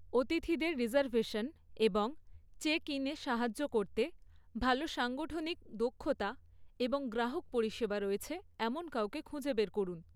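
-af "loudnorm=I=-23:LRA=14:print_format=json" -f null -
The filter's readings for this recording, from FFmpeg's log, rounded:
"input_i" : "-36.4",
"input_tp" : "-17.3",
"input_lra" : "2.5",
"input_thresh" : "-46.6",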